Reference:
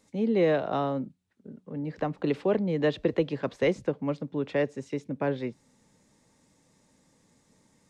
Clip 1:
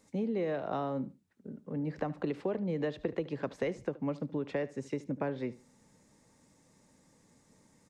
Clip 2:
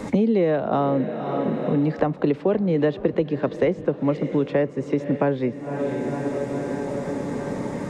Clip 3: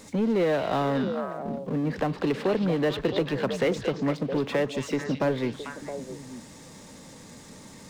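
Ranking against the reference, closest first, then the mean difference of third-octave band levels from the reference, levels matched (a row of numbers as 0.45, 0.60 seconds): 1, 2, 3; 3.0, 5.0, 8.0 decibels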